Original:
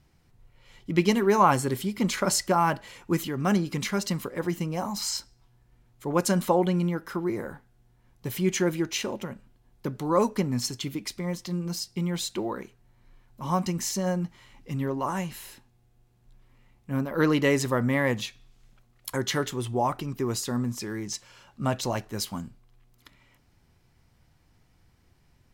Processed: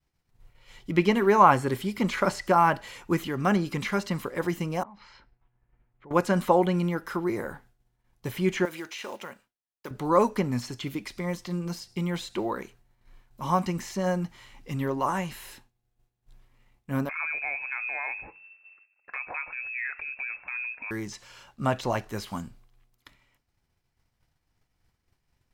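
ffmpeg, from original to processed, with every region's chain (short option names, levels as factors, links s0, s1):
-filter_complex "[0:a]asettb=1/sr,asplit=3[s0][s1][s2];[s0]atrim=end=4.834[s3];[s1]atrim=start=4.83:end=6.11,asetpts=PTS-STARTPTS,afade=t=in:d=0.004:c=qsin,afade=t=out:st=1.276:d=0.004:c=qsin,lowpass=f=2500:w=0.5412,lowpass=f=2500:w=1.3066,acompressor=threshold=0.00251:ratio=3:attack=3.2:release=140:knee=1:detection=peak[s4];[s2]atrim=start=6.106[s5];[s3][s4]acrossfade=d=0.004:c1=hsin:c2=qsin[s6];[s6][s5]acrossfade=d=0.004:c1=qsin:c2=hsin,asettb=1/sr,asplit=3[s7][s8][s9];[s7]atrim=end=8.654[s10];[s8]atrim=start=8.65:end=9.91,asetpts=PTS-STARTPTS,afade=t=in:d=0.004:c=qsin,afade=t=out:st=1.256:d=0.004:c=qsin,highpass=f=800:p=1,acompressor=threshold=0.0224:ratio=4:attack=3.2:release=140:knee=1:detection=peak,acrusher=bits=6:mode=log:mix=0:aa=0.000001[s11];[s9]atrim=start=9.906[s12];[s10][s11]acrossfade=d=0.004:c1=hsin:c2=qsin[s13];[s13][s12]acrossfade=d=0.004:c1=qsin:c2=hsin,asettb=1/sr,asplit=3[s14][s15][s16];[s14]atrim=end=17.094[s17];[s15]atrim=start=17.09:end=20.91,asetpts=PTS-STARTPTS,afade=t=in:d=0.004:c=qsin,afade=t=out:st=3.816:d=0.004:c=qsin,lowpass=f=2300:t=q:w=0.5098,lowpass=f=2300:t=q:w=0.6013,lowpass=f=2300:t=q:w=0.9,lowpass=f=2300:t=q:w=2.563,afreqshift=-2700,acompressor=threshold=0.01:ratio=2:attack=3.2:release=140:knee=1:detection=peak[s18];[s16]atrim=start=20.906[s19];[s17][s18]acrossfade=d=0.004:c1=hsin:c2=qsin[s20];[s20][s19]acrossfade=d=0.004:c1=qsin:c2=hsin,acrossover=split=2800[s21][s22];[s22]acompressor=threshold=0.00447:ratio=4:attack=1:release=60[s23];[s21][s23]amix=inputs=2:normalize=0,agate=range=0.0224:threshold=0.00251:ratio=3:detection=peak,equalizer=f=170:w=0.39:g=-5,volume=1.58"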